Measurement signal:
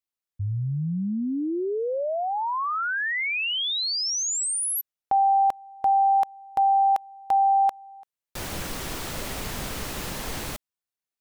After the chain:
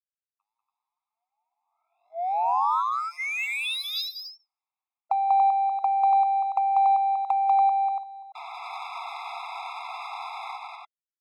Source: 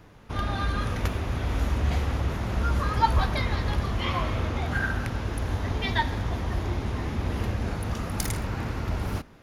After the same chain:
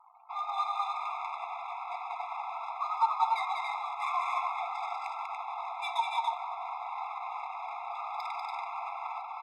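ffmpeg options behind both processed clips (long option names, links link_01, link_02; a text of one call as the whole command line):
ffmpeg -i in.wav -filter_complex "[0:a]acrusher=bits=9:dc=4:mix=0:aa=0.000001,acompressor=threshold=-29dB:ratio=6:attack=23:release=89:knee=6:detection=peak,highpass=frequency=820:width_type=q:width=1.7,afftdn=noise_reduction=28:noise_floor=-50,bandreject=frequency=1500:width=14,asplit=2[link_01][link_02];[link_02]aecho=0:1:192.4|285.7:0.708|0.708[link_03];[link_01][link_03]amix=inputs=2:normalize=0,aresample=11025,aresample=44100,adynamicsmooth=sensitivity=4.5:basefreq=2600,afftfilt=real='re*eq(mod(floor(b*sr/1024/680),2),1)':imag='im*eq(mod(floor(b*sr/1024/680),2),1)':win_size=1024:overlap=0.75" out.wav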